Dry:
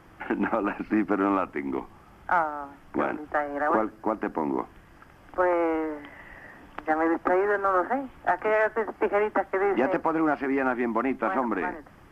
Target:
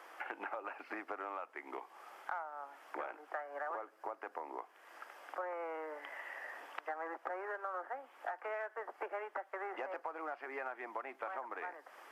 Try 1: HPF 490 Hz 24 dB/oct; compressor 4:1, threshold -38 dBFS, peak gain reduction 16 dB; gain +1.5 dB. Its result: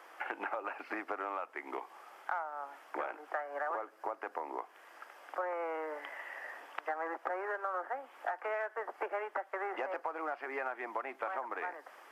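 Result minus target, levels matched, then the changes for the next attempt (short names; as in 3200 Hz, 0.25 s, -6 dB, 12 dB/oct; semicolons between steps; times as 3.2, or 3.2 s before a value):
compressor: peak gain reduction -4.5 dB
change: compressor 4:1, threshold -44 dBFS, peak gain reduction 20.5 dB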